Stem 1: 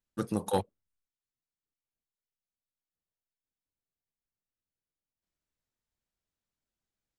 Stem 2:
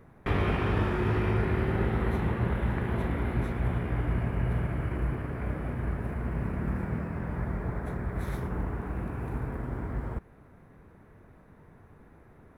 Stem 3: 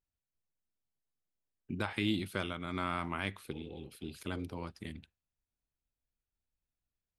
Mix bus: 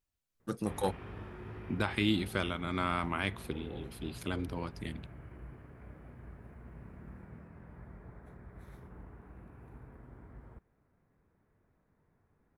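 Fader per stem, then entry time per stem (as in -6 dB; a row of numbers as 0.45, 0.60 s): -3.5, -18.5, +3.0 dB; 0.30, 0.40, 0.00 s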